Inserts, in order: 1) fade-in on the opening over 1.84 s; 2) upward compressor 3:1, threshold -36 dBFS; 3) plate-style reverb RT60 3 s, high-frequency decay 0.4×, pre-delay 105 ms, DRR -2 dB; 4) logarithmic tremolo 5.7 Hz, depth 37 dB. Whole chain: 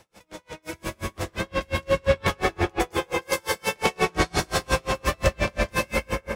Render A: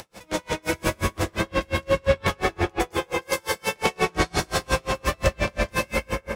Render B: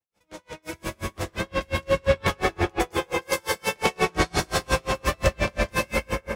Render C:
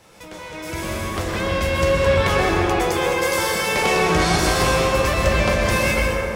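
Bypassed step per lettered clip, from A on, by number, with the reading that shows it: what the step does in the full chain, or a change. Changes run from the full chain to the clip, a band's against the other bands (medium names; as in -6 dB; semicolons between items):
1, momentary loudness spread change -7 LU; 2, momentary loudness spread change -2 LU; 4, momentary loudness spread change -2 LU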